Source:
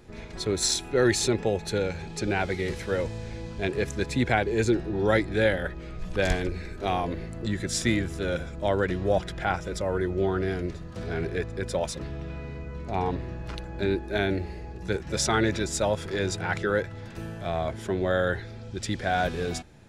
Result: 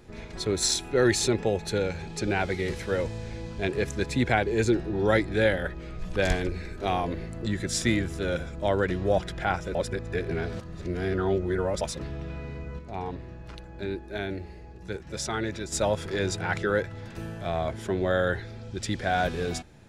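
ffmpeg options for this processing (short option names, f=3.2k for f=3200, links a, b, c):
-filter_complex "[0:a]asplit=5[a][b][c][d][e];[a]atrim=end=9.752[f];[b]atrim=start=9.748:end=11.812,asetpts=PTS-STARTPTS,areverse[g];[c]atrim=start=11.808:end=12.792[h];[d]atrim=start=12.788:end=15.722,asetpts=PTS-STARTPTS,volume=-6.5dB[i];[e]atrim=start=15.718[j];[f][g]acrossfade=d=0.004:c1=hsin:c2=hsin[k];[k][h]acrossfade=d=0.004:c1=hsin:c2=hsin[l];[l][i]acrossfade=d=0.004:c1=hsin:c2=hsin[m];[m][j]acrossfade=d=0.004:c1=hsin:c2=hsin"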